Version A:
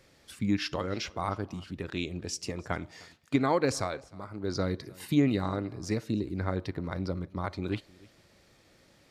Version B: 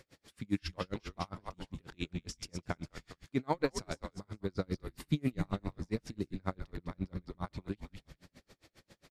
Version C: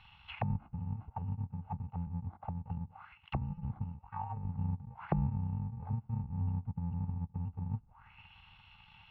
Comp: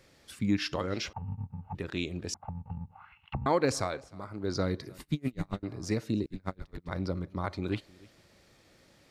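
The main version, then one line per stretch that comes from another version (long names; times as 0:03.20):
A
0:01.13–0:01.75: punch in from C
0:02.34–0:03.46: punch in from C
0:04.98–0:05.63: punch in from B
0:06.26–0:06.89: punch in from B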